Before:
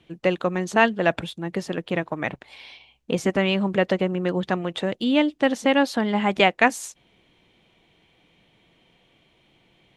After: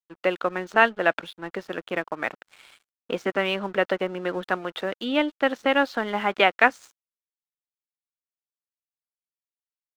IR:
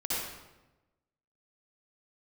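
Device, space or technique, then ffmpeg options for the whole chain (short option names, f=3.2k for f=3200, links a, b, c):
pocket radio on a weak battery: -af "highpass=320,lowpass=4.4k,aeval=exprs='sgn(val(0))*max(abs(val(0))-0.00501,0)':c=same,equalizer=f=1.4k:t=o:w=0.45:g=7.5,volume=-1dB"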